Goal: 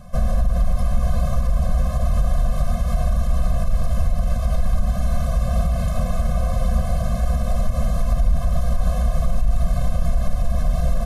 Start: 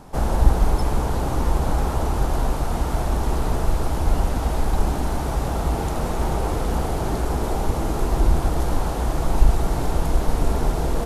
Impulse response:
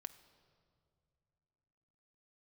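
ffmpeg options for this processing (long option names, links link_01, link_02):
-filter_complex "[0:a]lowshelf=frequency=190:gain=5,alimiter=limit=-12dB:level=0:latency=1:release=85,asplit=2[link_01][link_02];[1:a]atrim=start_sample=2205,asetrate=42777,aresample=44100[link_03];[link_02][link_03]afir=irnorm=-1:irlink=0,volume=10dB[link_04];[link_01][link_04]amix=inputs=2:normalize=0,afftfilt=real='re*eq(mod(floor(b*sr/1024/250),2),0)':imag='im*eq(mod(floor(b*sr/1024/250),2),0)':win_size=1024:overlap=0.75,volume=-7dB"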